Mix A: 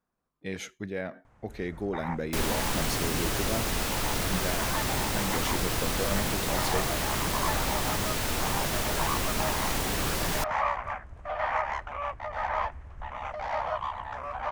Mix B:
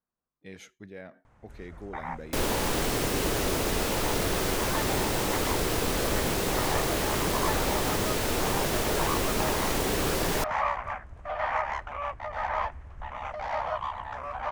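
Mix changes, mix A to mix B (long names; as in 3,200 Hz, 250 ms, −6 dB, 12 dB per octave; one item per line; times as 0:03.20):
speech −9.5 dB
second sound: add parametric band 420 Hz +7.5 dB 1.2 octaves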